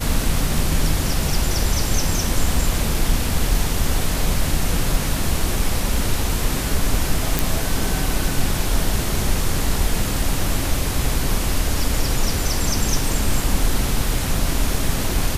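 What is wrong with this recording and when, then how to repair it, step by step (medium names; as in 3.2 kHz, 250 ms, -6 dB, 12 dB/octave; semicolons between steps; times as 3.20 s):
7.39 s: pop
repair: de-click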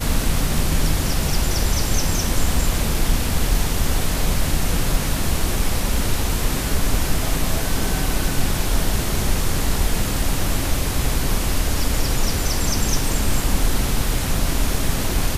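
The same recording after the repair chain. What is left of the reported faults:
nothing left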